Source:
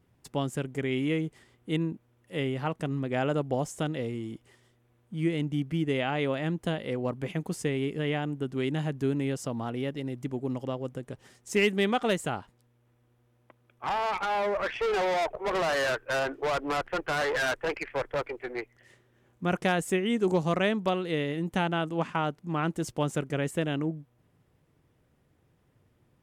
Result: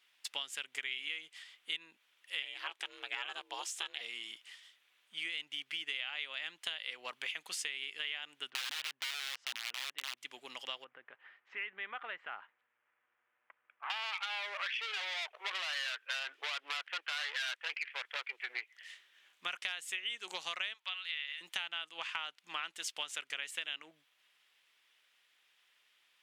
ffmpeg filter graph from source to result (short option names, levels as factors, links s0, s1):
-filter_complex "[0:a]asettb=1/sr,asplit=3[s0][s1][s2];[s0]atrim=end=2.424[s3];[s1]atrim=start=2.42:end=4.01,asetpts=PTS-STARTPTS,afade=t=in:d=0.004:c=qsin,afade=t=out:st=1.586:d=0.004:c=qsin,aecho=1:1:1.3:0.32,atrim=end_sample=70119,aeval=exprs='val(0)*sin(2*PI*190*n/s)':c=same[s4];[s2]atrim=start=4.006[s5];[s3][s4]acrossfade=d=0.004:c1=hsin:c2=qsin[s6];[s6][s5]acrossfade=d=0.004:c1=qsin:c2=hsin,asettb=1/sr,asplit=3[s7][s8][s9];[s7]atrim=end=8.504[s10];[s8]atrim=start=8.5:end=10.17,asetpts=PTS-STARTPTS,afade=t=in:d=0.004:c=qsin,afade=t=out:st=1.666:d=0.004:c=qsin,lowpass=1500,aeval=exprs='(mod(23.7*val(0)+1,2)-1)/23.7':c=same[s11];[s9]atrim=start=10.166[s12];[s10][s11]acrossfade=d=0.004:c1=hsin:c2=qsin[s13];[s13][s12]acrossfade=d=0.004:c1=qsin:c2=hsin,asettb=1/sr,asplit=3[s14][s15][s16];[s14]atrim=end=10.844[s17];[s15]atrim=start=10.84:end=13.9,asetpts=PTS-STARTPTS,afade=t=in:d=0.004:c=qsin,afade=t=out:st=3.056:d=0.004:c=qsin,lowpass=f=1800:w=0.5412,lowpass=f=1800:w=1.3066,acompressor=threshold=0.0141:ratio=2:attack=3.2:release=140:knee=1:detection=peak[s18];[s16]atrim=start=13.896[s19];[s17][s18]acrossfade=d=0.004:c1=hsin:c2=qsin[s20];[s20][s19]acrossfade=d=0.004:c1=qsin:c2=hsin,asettb=1/sr,asplit=3[s21][s22][s23];[s21]atrim=end=20.744[s24];[s22]atrim=start=20.74:end=21.41,asetpts=PTS-STARTPTS,afade=t=in:d=0.004:c=qsin,afade=t=out:st=0.666:d=0.004:c=qsin,highpass=1100,acrossover=split=4100[s25][s26];[s26]acompressor=threshold=0.001:ratio=4:attack=1:release=60[s27];[s25][s27]amix=inputs=2:normalize=0[s28];[s23]atrim=start=21.406[s29];[s24][s28]acrossfade=d=0.004:c1=hsin:c2=qsin[s30];[s30][s29]acrossfade=d=0.004:c1=qsin:c2=hsin,highpass=1500,equalizer=f=3200:w=0.8:g=13.5,acompressor=threshold=0.0141:ratio=6,volume=1.12"